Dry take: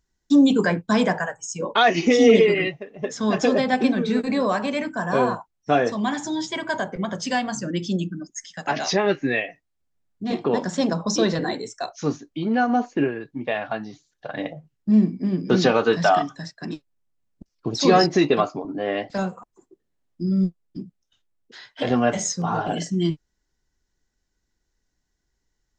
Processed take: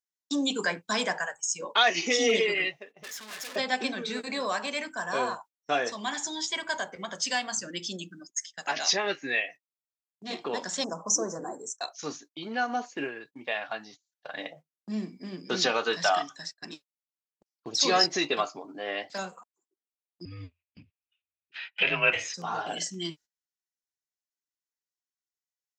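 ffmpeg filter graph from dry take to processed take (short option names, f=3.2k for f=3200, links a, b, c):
-filter_complex "[0:a]asettb=1/sr,asplit=3[a][b][c];[a]atrim=end=3.034[d];[b]atrim=start=3.03:end=3.56,asetpts=PTS-STARTPTS,afade=t=in:d=0.004:c=qsin,afade=t=out:st=0.526:d=0.004:c=qsin,equalizer=f=2k:w=1.1:g=13,aeval=exprs='(tanh(20*val(0)+0.25)-tanh(0.25))/20':c=same,aeval=exprs='max(val(0),0)':c=same[e];[c]atrim=start=3.556[f];[d][e]acrossfade=d=0.004:c1=hsin:c2=qsin[g];[g][f]acrossfade=d=0.004:c1=qsin:c2=hsin,asettb=1/sr,asplit=3[h][i][j];[h]atrim=end=10.844[k];[i]atrim=start=10.84:end=11.81,asetpts=PTS-STARTPTS,afade=t=in:d=0.004:c=qsin,afade=t=out:st=0.966:d=0.004:c=qsin,asuperstop=centerf=3100:order=8:qfactor=0.53,equalizer=f=6k:t=o:w=0.37:g=14.5[l];[j]atrim=start=11.806[m];[k][l]acrossfade=d=0.004:c1=hsin:c2=qsin[n];[n][m]acrossfade=d=0.004:c1=qsin:c2=hsin,asettb=1/sr,asplit=3[o][p][q];[o]atrim=end=20.254[r];[p]atrim=start=20.25:end=22.34,asetpts=PTS-STARTPTS,afade=t=in:d=0.004:c=qsin,afade=t=out:st=2.086:d=0.004:c=qsin,lowpass=f=2.6k:t=q:w=11,afreqshift=-89[s];[q]atrim=start=22.336[t];[r][s]acrossfade=d=0.004:c1=hsin:c2=qsin[u];[u][t]acrossfade=d=0.004:c1=qsin:c2=hsin,agate=range=-19dB:threshold=-39dB:ratio=16:detection=peak,highpass=f=780:p=1,highshelf=f=2.8k:g=9.5,volume=-5dB"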